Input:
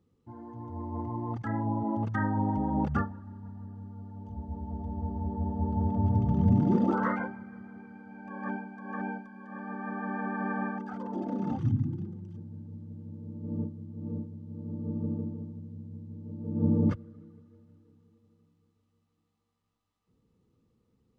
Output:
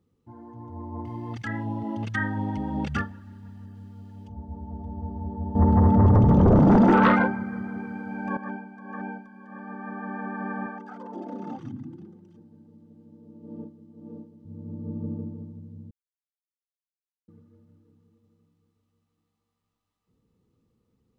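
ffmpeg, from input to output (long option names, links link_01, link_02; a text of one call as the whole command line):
ffmpeg -i in.wav -filter_complex "[0:a]asettb=1/sr,asplit=3[link_01][link_02][link_03];[link_01]atrim=end=1.054[link_04];[link_02]atrim=start=1.05:end=4.28,asetpts=PTS-STARTPTS,afade=type=in:duration=0.004:curve=qsin,afade=type=out:start_time=3.226:duration=0.004:curve=qsin,highshelf=frequency=1600:width_type=q:width=1.5:gain=14[link_05];[link_03]atrim=start=4.276[link_06];[link_04][link_05]acrossfade=duration=0.004:curve1=hsin:curve2=qsin[link_07];[link_07][link_06]acrossfade=duration=0.004:curve1=qsin:curve2=hsin,asettb=1/sr,asplit=3[link_08][link_09][link_10];[link_08]atrim=end=5.554[link_11];[link_09]atrim=start=5.55:end=8.37,asetpts=PTS-STARTPTS,afade=type=in:duration=0.004:curve=qsin,afade=type=out:start_time=2.816:duration=0.004:curve=qsin,aeval=exprs='0.251*sin(PI/2*2.82*val(0)/0.251)':channel_layout=same[link_12];[link_10]atrim=start=8.366[link_13];[link_11][link_12]acrossfade=duration=0.004:curve1=hsin:curve2=qsin[link_14];[link_14][link_13]acrossfade=duration=0.004:curve1=qsin:curve2=hsin,asettb=1/sr,asplit=3[link_15][link_16][link_17];[link_15]atrim=end=10.664[link_18];[link_16]atrim=start=10.66:end=14.45,asetpts=PTS-STARTPTS,afade=type=in:duration=0.004:curve=qsin,afade=type=out:start_time=3.786:duration=0.004:curve=qsin,highpass=270[link_19];[link_17]atrim=start=14.446[link_20];[link_18][link_19]acrossfade=duration=0.004:curve1=hsin:curve2=qsin[link_21];[link_21][link_20]acrossfade=duration=0.004:curve1=qsin:curve2=hsin,asplit=3[link_22][link_23][link_24];[link_22]atrim=end=15.91,asetpts=PTS-STARTPTS,afade=type=out:start_time=15.906:duration=0.004:curve=hsin[link_25];[link_23]atrim=start=15.91:end=17.28,asetpts=PTS-STARTPTS,volume=0[link_26];[link_24]atrim=start=17.28,asetpts=PTS-STARTPTS,afade=type=in:duration=0.004:curve=hsin[link_27];[link_25][link_26][link_27]concat=n=3:v=0:a=1" out.wav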